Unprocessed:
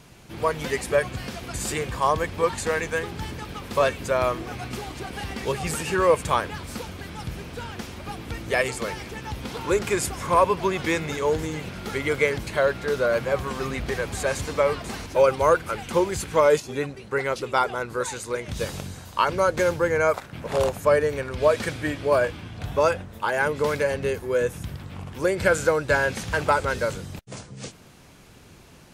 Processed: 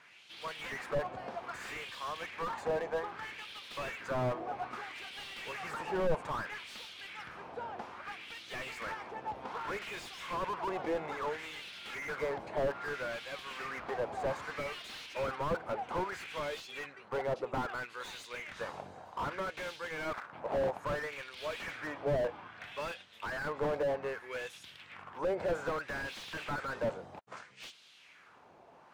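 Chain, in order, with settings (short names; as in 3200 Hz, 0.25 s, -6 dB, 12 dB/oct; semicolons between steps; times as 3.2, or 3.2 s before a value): LFO band-pass sine 0.62 Hz 710–3600 Hz; slew limiter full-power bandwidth 15 Hz; gain +2.5 dB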